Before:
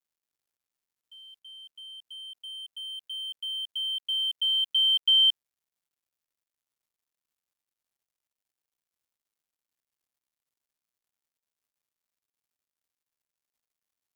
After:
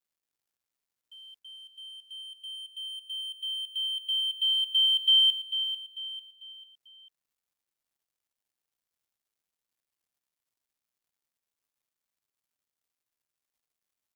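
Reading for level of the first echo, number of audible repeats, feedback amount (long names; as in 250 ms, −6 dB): −9.5 dB, 4, 39%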